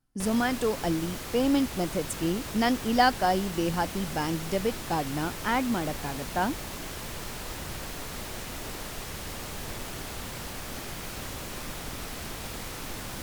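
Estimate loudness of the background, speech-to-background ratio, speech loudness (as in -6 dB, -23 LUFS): -37.0 LUFS, 8.5 dB, -28.5 LUFS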